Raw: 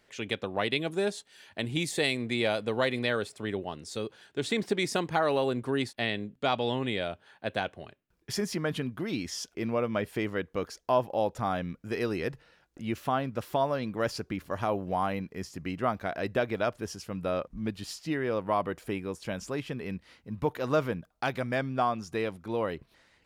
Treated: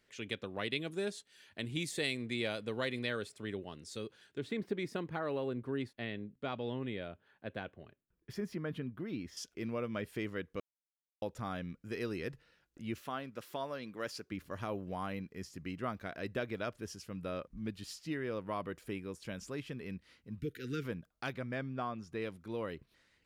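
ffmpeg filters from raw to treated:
-filter_complex "[0:a]asettb=1/sr,asplit=3[a][b][c];[a]atrim=end=4.384[d];[b]atrim=start=4.38:end=9.37,asetpts=PTS-STARTPTS,afade=t=in:d=0.004:c=qsin,afade=t=out:st=4.986:d=0.004:c=qsin,equalizer=f=7.6k:w=0.44:g=-15[e];[c]atrim=start=9.366[f];[d][e]acrossfade=d=0.004:c1=hsin:c2=qsin[g];[g][f]acrossfade=d=0.004:c1=qsin:c2=hsin,asettb=1/sr,asplit=3[h][i][j];[h]atrim=end=13.014[k];[i]atrim=start=13.01:end=14.32,asetpts=PTS-STARTPTS,afade=t=in:d=0.004:c=qsin,afade=t=out:st=1.306:d=0.004:c=qsin,highpass=f=350:p=1[l];[j]atrim=start=14.316[m];[k][l]acrossfade=d=0.004:c1=hsin:c2=qsin[n];[n][m]acrossfade=d=0.004:c1=qsin:c2=hsin,asplit=3[o][p][q];[o]afade=t=out:st=20.38:d=0.02[r];[p]asuperstop=centerf=800:order=12:qfactor=0.83,afade=t=in:st=20.38:d=0.02,afade=t=out:st=20.83:d=0.02[s];[q]afade=t=in:st=20.83:d=0.02[t];[r][s][t]amix=inputs=3:normalize=0,asettb=1/sr,asplit=3[u][v][w];[u]atrim=end=21.334[x];[v]atrim=start=21.33:end=22.22,asetpts=PTS-STARTPTS,afade=t=in:d=0.004:c=qsin,afade=t=out:st=0.886:d=0.004:c=qsin,highshelf=f=4.2k:g=-11[y];[w]atrim=start=22.216[z];[x][y]acrossfade=d=0.004:c1=hsin:c2=qsin[aa];[aa][z]acrossfade=d=0.004:c1=qsin:c2=hsin,asplit=3[ab][ac][ad];[ab]atrim=end=10.6,asetpts=PTS-STARTPTS,afade=t=out:st=10.596:d=0.004:c=hsin[ae];[ac]atrim=start=10.6:end=11.22,asetpts=PTS-STARTPTS,volume=0[af];[ad]atrim=start=11.22,asetpts=PTS-STARTPTS,afade=t=in:d=0.004:c=hsin[ag];[ae][af][ag]concat=n=3:v=0:a=1,equalizer=f=780:w=1.6:g=-7.5,volume=-6.5dB"

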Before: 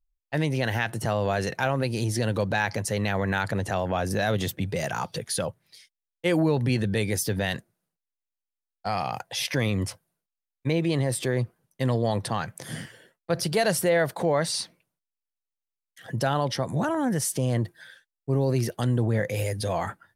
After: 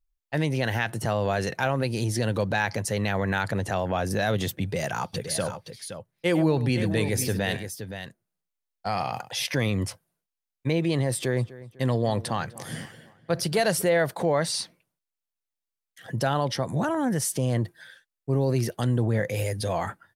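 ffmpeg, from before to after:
-filter_complex "[0:a]asplit=3[a][b][c];[a]afade=t=out:st=5.13:d=0.02[d];[b]aecho=1:1:101|520:0.2|0.335,afade=t=in:st=5.13:d=0.02,afade=t=out:st=9.36:d=0.02[e];[c]afade=t=in:st=9.36:d=0.02[f];[d][e][f]amix=inputs=3:normalize=0,asettb=1/sr,asplit=3[g][h][i];[g]atrim=end=11.114[j];[h]atrim=start=11.11:end=13.82,asetpts=PTS-STARTPTS,afade=t=in:d=0.004:c=qsin,afade=t=out:st=2.706:d=0.004:c=qsin,asplit=2[k][l];[l]adelay=250,lowpass=f=2.9k:p=1,volume=-17.5dB,asplit=2[m][n];[n]adelay=250,lowpass=f=2.9k:p=1,volume=0.46,asplit=2[o][p];[p]adelay=250,lowpass=f=2.9k:p=1,volume=0.46,asplit=2[q][r];[r]adelay=250,lowpass=f=2.9k:p=1,volume=0.46[s];[k][m][o][q][s]amix=inputs=5:normalize=0,atrim=end_sample=119511[t];[i]atrim=start=13.816[u];[j][t]acrossfade=d=0.004:c1=hsin:c2=qsin[v];[v][u]acrossfade=d=0.004:c1=qsin:c2=hsin"

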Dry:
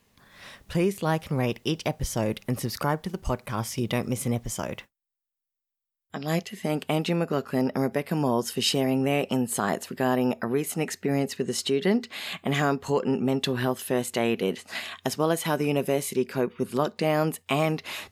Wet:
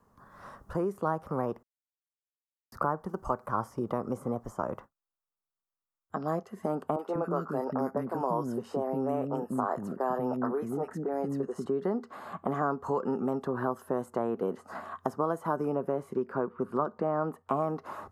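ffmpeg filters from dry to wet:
-filter_complex "[0:a]asettb=1/sr,asplit=3[a][b][c];[a]atrim=end=6.964[d];[b]atrim=start=6.96:end=11.66,asetpts=PTS-STARTPTS,afade=t=in:d=0.004:c=qsin,afade=t=out:st=4.696:d=0.004:c=qsin,acrossover=split=330|1400[e][f][g];[g]adelay=30[h];[e]adelay=190[i];[i][f][h]amix=inputs=3:normalize=0,atrim=end_sample=207270[j];[c]atrim=start=11.656[k];[d][j]acrossfade=d=0.004:c1=hsin:c2=qsin[l];[l][k]acrossfade=d=0.004:c1=qsin:c2=hsin,asettb=1/sr,asplit=3[m][n][o];[m]atrim=end=15.754[p];[n]atrim=start=15.75:end=17.49,asetpts=PTS-STARTPTS,afade=t=in:d=0.004:c=qsin,afade=t=out:st=1.736:d=0.004:c=qsin,bass=f=250:g=0,treble=f=4k:g=-15[q];[o]atrim=start=17.486[r];[p][q]acrossfade=d=0.004:c1=hsin:c2=qsin[s];[s][r]acrossfade=d=0.004:c1=qsin:c2=hsin,asplit=3[t][u][v];[t]atrim=end=1.63,asetpts=PTS-STARTPTS,afade=t=out:st=1.626:d=0.004:c=hsin[w];[u]atrim=start=1.63:end=2.72,asetpts=PTS-STARTPTS,volume=0[x];[v]atrim=start=2.72,asetpts=PTS-STARTPTS,afade=t=in:d=0.004:c=hsin[y];[w][x][y]concat=n=3:v=0:a=1,equalizer=f=3.7k:w=2.4:g=-6.5,acrossover=split=250|1600[z][aa][ab];[z]acompressor=threshold=-42dB:ratio=4[ac];[aa]acompressor=threshold=-29dB:ratio=4[ad];[ab]acompressor=threshold=-47dB:ratio=4[ae];[ac][ad][ae]amix=inputs=3:normalize=0,highshelf=f=1.7k:t=q:w=3:g=-11"

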